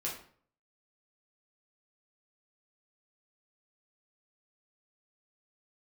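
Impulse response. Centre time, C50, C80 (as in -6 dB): 32 ms, 6.0 dB, 10.0 dB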